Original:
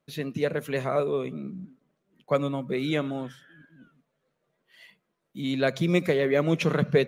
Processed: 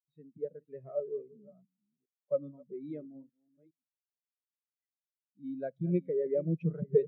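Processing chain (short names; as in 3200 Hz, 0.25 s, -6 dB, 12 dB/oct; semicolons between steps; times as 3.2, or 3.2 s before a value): reverse delay 0.412 s, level -9.5 dB; spectral expander 2.5:1; gain -4.5 dB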